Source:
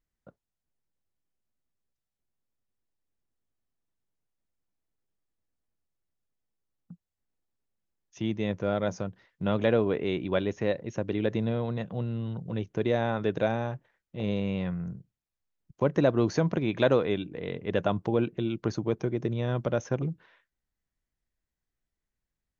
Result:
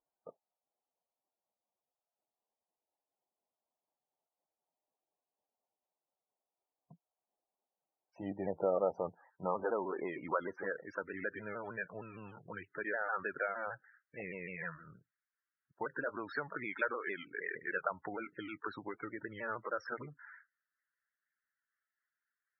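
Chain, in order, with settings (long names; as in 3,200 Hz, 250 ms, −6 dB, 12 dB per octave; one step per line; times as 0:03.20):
pitch shifter swept by a sawtooth −3 semitones, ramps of 154 ms
downward compressor 12 to 1, threshold −28 dBFS, peak gain reduction 11 dB
band-pass filter sweep 750 Hz → 1,600 Hz, 0:08.80–0:11.51
spectral peaks only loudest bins 32
level +10.5 dB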